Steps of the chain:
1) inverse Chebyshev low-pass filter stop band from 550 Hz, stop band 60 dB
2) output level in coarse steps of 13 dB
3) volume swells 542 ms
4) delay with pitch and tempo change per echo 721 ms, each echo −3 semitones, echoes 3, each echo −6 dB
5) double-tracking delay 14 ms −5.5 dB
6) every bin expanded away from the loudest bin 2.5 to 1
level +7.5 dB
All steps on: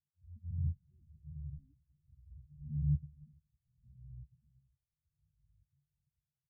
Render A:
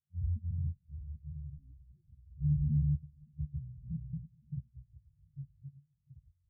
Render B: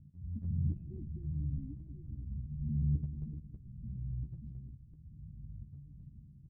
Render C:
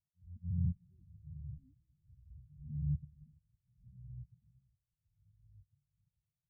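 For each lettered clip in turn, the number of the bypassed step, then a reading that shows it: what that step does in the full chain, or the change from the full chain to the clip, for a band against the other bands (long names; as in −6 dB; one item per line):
3, change in crest factor −4.0 dB
6, change in crest factor −4.0 dB
5, change in momentary loudness spread −2 LU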